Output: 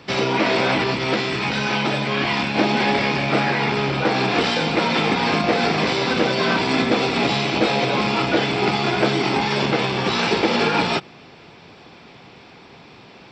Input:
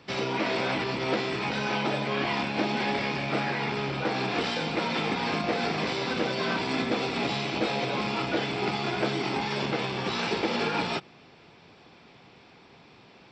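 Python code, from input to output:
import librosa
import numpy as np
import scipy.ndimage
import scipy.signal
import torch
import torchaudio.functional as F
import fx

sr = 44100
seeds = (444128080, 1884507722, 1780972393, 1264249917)

y = fx.peak_eq(x, sr, hz=550.0, db=-4.5, octaves=2.3, at=(0.94, 2.55))
y = F.gain(torch.from_numpy(y), 9.0).numpy()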